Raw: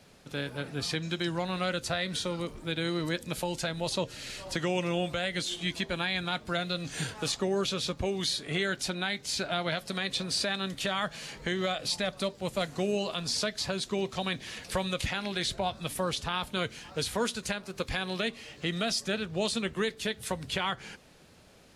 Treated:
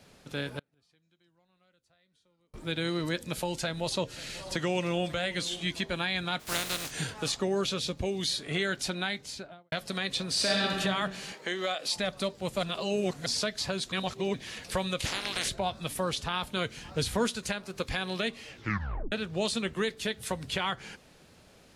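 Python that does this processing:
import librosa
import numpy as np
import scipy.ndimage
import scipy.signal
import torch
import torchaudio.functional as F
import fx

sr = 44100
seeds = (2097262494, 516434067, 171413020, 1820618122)

y = fx.gate_flip(x, sr, shuts_db=-34.0, range_db=-38, at=(0.59, 2.54))
y = fx.echo_single(y, sr, ms=540, db=-18.5, at=(3.55, 5.66))
y = fx.spec_flatten(y, sr, power=0.31, at=(6.39, 6.9), fade=0.02)
y = fx.peak_eq(y, sr, hz=1200.0, db=-6.5, octaves=1.1, at=(7.79, 8.29))
y = fx.studio_fade_out(y, sr, start_s=9.04, length_s=0.68)
y = fx.reverb_throw(y, sr, start_s=10.32, length_s=0.46, rt60_s=1.7, drr_db=-3.0)
y = fx.highpass(y, sr, hz=340.0, slope=12, at=(11.32, 11.96))
y = fx.spec_clip(y, sr, under_db=25, at=(15.04, 15.48), fade=0.02)
y = fx.low_shelf(y, sr, hz=210.0, db=8.5, at=(16.77, 17.28))
y = fx.edit(y, sr, fx.reverse_span(start_s=12.63, length_s=0.63),
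    fx.reverse_span(start_s=13.92, length_s=0.42),
    fx.tape_stop(start_s=18.48, length_s=0.64), tone=tone)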